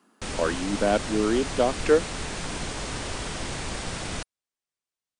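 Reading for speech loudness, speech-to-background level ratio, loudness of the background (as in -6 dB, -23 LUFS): -25.0 LUFS, 7.5 dB, -32.5 LUFS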